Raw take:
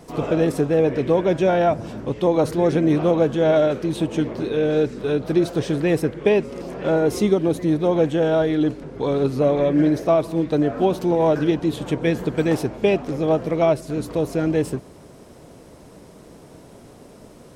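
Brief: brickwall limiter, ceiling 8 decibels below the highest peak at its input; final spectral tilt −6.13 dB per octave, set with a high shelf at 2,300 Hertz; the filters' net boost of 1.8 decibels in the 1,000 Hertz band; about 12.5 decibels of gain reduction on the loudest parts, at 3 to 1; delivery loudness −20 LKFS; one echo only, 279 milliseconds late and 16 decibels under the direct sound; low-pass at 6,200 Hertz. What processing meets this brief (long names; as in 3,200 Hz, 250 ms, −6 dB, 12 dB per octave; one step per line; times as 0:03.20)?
low-pass filter 6,200 Hz
parametric band 1,000 Hz +3.5 dB
high-shelf EQ 2,300 Hz −4.5 dB
downward compressor 3 to 1, threshold −30 dBFS
brickwall limiter −24.5 dBFS
single-tap delay 279 ms −16 dB
level +13.5 dB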